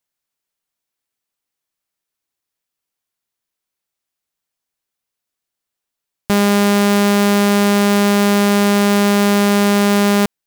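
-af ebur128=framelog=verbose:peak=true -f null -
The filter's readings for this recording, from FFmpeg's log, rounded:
Integrated loudness:
  I:         -13.6 LUFS
  Threshold: -23.7 LUFS
Loudness range:
  LRA:         8.7 LU
  Threshold: -35.4 LUFS
  LRA low:   -22.1 LUFS
  LRA high:  -13.4 LUFS
True peak:
  Peak:       -6.2 dBFS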